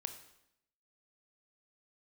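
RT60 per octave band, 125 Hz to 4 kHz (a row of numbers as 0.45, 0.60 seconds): 0.80, 0.90, 0.80, 0.75, 0.75, 0.75 seconds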